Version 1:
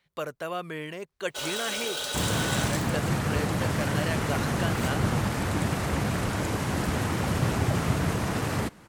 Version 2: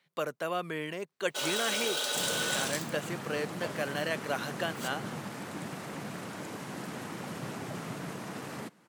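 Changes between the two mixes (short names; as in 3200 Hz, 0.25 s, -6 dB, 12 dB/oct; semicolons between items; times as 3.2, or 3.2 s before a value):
second sound -10.5 dB; master: add HPF 150 Hz 24 dB/oct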